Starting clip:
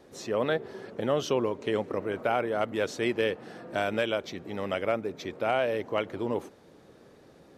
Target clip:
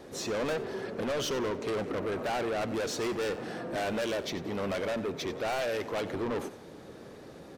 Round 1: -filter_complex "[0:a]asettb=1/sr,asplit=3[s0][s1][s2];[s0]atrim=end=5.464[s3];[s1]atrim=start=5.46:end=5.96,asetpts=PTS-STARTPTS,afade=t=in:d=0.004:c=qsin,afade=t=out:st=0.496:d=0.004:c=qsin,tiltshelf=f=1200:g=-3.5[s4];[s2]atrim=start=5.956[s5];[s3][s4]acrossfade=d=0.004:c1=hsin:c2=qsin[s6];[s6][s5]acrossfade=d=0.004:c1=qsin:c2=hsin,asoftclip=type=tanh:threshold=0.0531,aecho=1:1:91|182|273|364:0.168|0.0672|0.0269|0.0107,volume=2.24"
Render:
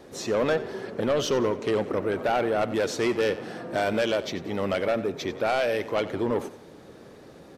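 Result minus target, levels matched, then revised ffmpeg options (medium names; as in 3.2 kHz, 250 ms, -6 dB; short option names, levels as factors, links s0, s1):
saturation: distortion -7 dB
-filter_complex "[0:a]asettb=1/sr,asplit=3[s0][s1][s2];[s0]atrim=end=5.464[s3];[s1]atrim=start=5.46:end=5.96,asetpts=PTS-STARTPTS,afade=t=in:d=0.004:c=qsin,afade=t=out:st=0.496:d=0.004:c=qsin,tiltshelf=f=1200:g=-3.5[s4];[s2]atrim=start=5.956[s5];[s3][s4]acrossfade=d=0.004:c1=hsin:c2=qsin[s6];[s6][s5]acrossfade=d=0.004:c1=qsin:c2=hsin,asoftclip=type=tanh:threshold=0.0158,aecho=1:1:91|182|273|364:0.168|0.0672|0.0269|0.0107,volume=2.24"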